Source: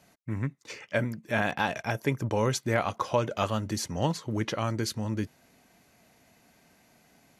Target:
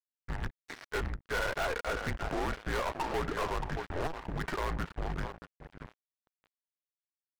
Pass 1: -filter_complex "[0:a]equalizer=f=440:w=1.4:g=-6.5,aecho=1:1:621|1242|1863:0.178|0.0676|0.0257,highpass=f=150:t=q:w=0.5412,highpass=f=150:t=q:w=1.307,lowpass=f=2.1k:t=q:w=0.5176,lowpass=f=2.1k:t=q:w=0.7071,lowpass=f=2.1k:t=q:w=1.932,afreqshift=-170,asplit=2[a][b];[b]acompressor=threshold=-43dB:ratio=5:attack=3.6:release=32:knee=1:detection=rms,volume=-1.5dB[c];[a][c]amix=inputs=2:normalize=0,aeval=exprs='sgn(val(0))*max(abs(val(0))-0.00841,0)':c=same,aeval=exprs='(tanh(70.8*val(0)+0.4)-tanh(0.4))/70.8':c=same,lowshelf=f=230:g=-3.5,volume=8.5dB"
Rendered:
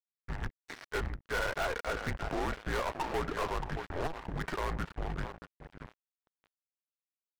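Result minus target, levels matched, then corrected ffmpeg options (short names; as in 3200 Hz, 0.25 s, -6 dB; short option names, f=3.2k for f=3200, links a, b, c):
compressor: peak gain reduction +7 dB
-filter_complex "[0:a]equalizer=f=440:w=1.4:g=-6.5,aecho=1:1:621|1242|1863:0.178|0.0676|0.0257,highpass=f=150:t=q:w=0.5412,highpass=f=150:t=q:w=1.307,lowpass=f=2.1k:t=q:w=0.5176,lowpass=f=2.1k:t=q:w=0.7071,lowpass=f=2.1k:t=q:w=1.932,afreqshift=-170,asplit=2[a][b];[b]acompressor=threshold=-34.5dB:ratio=5:attack=3.6:release=32:knee=1:detection=rms,volume=-1.5dB[c];[a][c]amix=inputs=2:normalize=0,aeval=exprs='sgn(val(0))*max(abs(val(0))-0.00841,0)':c=same,aeval=exprs='(tanh(70.8*val(0)+0.4)-tanh(0.4))/70.8':c=same,lowshelf=f=230:g=-3.5,volume=8.5dB"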